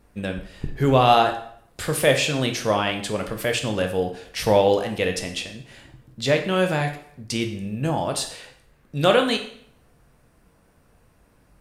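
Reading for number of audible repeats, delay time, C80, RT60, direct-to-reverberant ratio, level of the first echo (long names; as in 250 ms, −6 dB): no echo audible, no echo audible, 13.0 dB, 0.65 s, 4.5 dB, no echo audible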